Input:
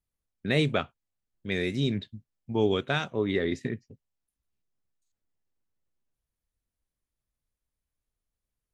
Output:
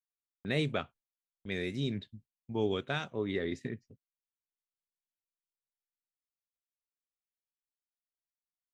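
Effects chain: gate -50 dBFS, range -25 dB; gain -6.5 dB

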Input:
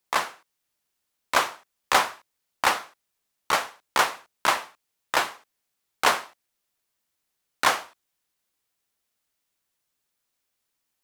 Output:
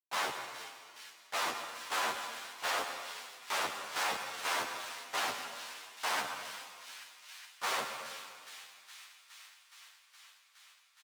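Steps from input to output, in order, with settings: Schmitt trigger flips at -34 dBFS; low shelf 150 Hz -6.5 dB; harmoniser -4 st -7 dB; weighting filter A; thin delay 0.417 s, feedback 80%, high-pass 2300 Hz, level -11 dB; reverb RT60 2.0 s, pre-delay 85 ms, DRR 6 dB; endless flanger 10.4 ms -0.51 Hz

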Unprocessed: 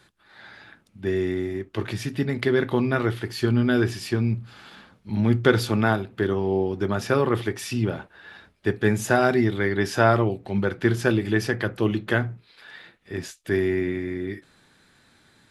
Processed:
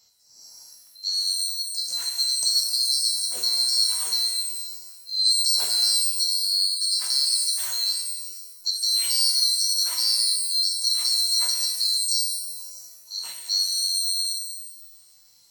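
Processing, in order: band-swap scrambler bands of 4000 Hz; tilt +2 dB/oct; limiter -6.5 dBFS, peak gain reduction 7.5 dB; shimmer reverb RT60 1.1 s, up +12 st, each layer -2 dB, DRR 1 dB; gain -7.5 dB

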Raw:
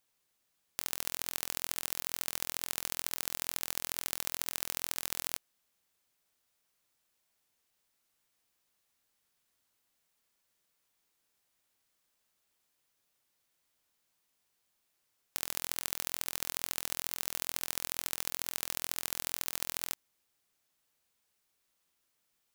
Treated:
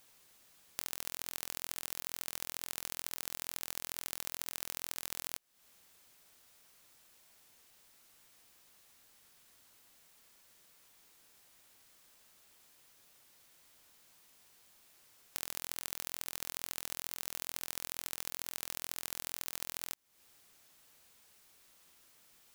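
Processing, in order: compressor 8:1, threshold -47 dBFS, peak gain reduction 19 dB; gain +14 dB

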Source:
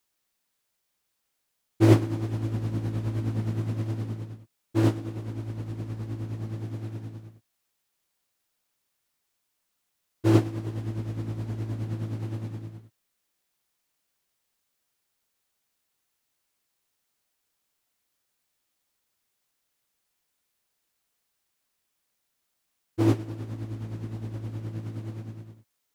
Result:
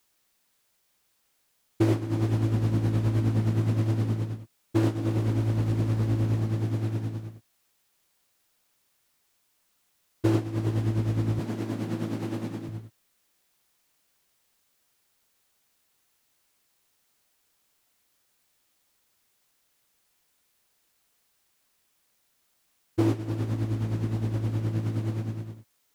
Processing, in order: 4.95–6.4 sample leveller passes 1; 11.39–12.69 HPF 150 Hz 24 dB/oct; compressor 10:1, threshold -27 dBFS, peak gain reduction 16 dB; gain +7 dB

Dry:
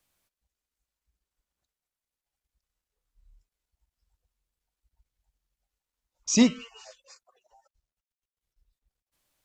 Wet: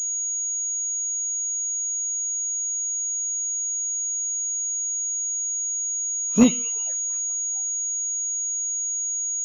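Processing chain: spectral delay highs late, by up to 0.111 s; low shelf 80 Hz -12 dB; envelope flanger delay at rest 6.7 ms, full sweep at -36 dBFS; pulse-width modulation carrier 6700 Hz; gain +6 dB

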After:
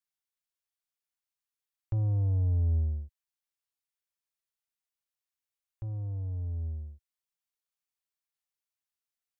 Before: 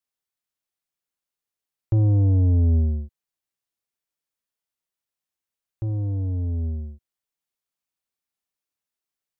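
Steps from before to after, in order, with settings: bell 260 Hz -14.5 dB 1.9 oct; gain -4.5 dB

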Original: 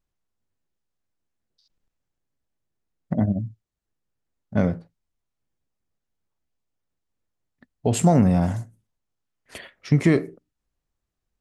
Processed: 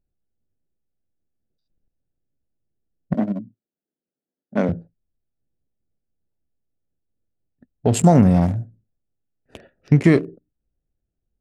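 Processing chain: Wiener smoothing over 41 samples; 3.14–4.69 HPF 210 Hz 24 dB/oct; gain +4 dB

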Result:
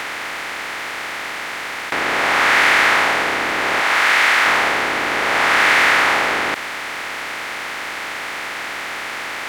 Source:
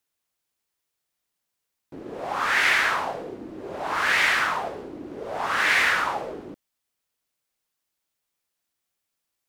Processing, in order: per-bin compression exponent 0.2; 3.8–4.46 low shelf 460 Hz -8 dB; gain +1.5 dB

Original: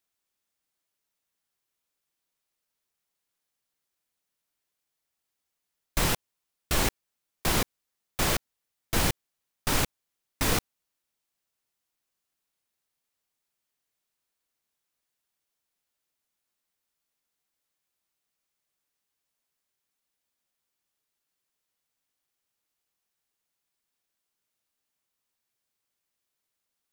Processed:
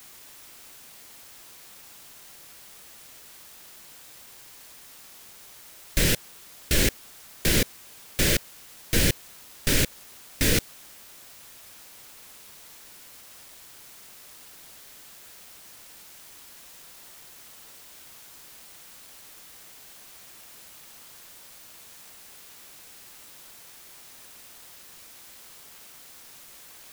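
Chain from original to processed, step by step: band shelf 950 Hz -15.5 dB 1.1 oct; in parallel at 0 dB: limiter -18.5 dBFS, peak gain reduction 7 dB; on the sum: requantised 8-bit, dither triangular

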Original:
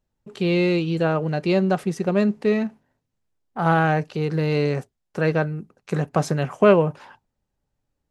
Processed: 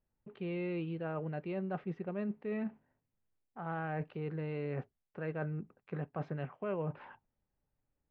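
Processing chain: LPF 2700 Hz 24 dB/oct; reverse; compressor 6:1, threshold -28 dBFS, peak gain reduction 17 dB; reverse; gain -7 dB

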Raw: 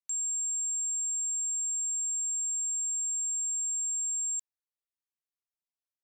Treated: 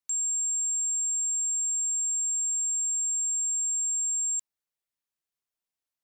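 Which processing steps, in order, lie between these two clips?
0.6–3.01 crackle 68/s -49 dBFS; gain +3.5 dB

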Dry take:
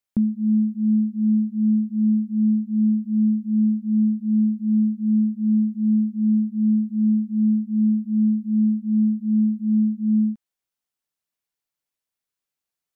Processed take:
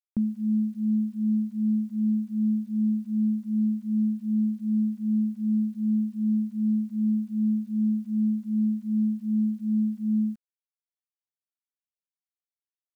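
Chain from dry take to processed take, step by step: bit-crush 10-bit; gain -5.5 dB

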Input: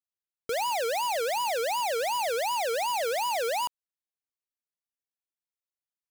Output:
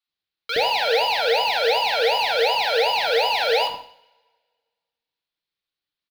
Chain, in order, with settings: resonant high shelf 5500 Hz -11.5 dB, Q 3; bands offset in time highs, lows 70 ms, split 770 Hz; two-slope reverb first 0.54 s, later 1.7 s, from -26 dB, DRR 4 dB; gain +7.5 dB

